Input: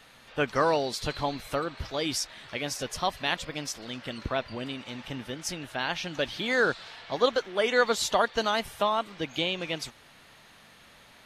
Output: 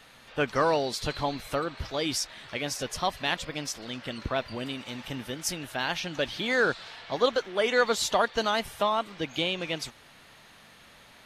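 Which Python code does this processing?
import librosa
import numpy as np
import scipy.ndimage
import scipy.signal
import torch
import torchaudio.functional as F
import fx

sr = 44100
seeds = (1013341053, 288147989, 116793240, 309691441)

p1 = fx.high_shelf(x, sr, hz=9800.0, db=11.0, at=(4.36, 6.0))
p2 = 10.0 ** (-23.5 / 20.0) * np.tanh(p1 / 10.0 ** (-23.5 / 20.0))
p3 = p1 + (p2 * 10.0 ** (-10.0 / 20.0))
y = p3 * 10.0 ** (-1.5 / 20.0)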